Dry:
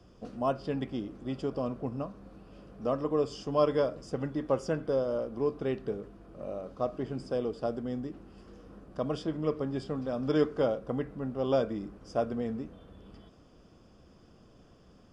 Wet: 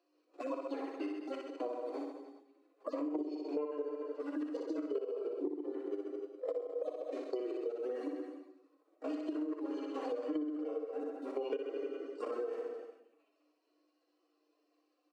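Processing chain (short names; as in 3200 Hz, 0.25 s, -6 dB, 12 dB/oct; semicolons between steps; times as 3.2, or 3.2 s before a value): median-filter separation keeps harmonic; hum 60 Hz, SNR 15 dB; gate -38 dBFS, range -20 dB; level quantiser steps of 13 dB; formant shift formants -3 st; Chebyshev high-pass 290 Hz, order 8; reverb, pre-delay 35 ms, DRR 7.5 dB; reverb removal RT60 0.68 s; reverse bouncing-ball echo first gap 60 ms, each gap 1.15×, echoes 5; compressor 20:1, threshold -50 dBFS, peak gain reduction 27 dB; gain +16 dB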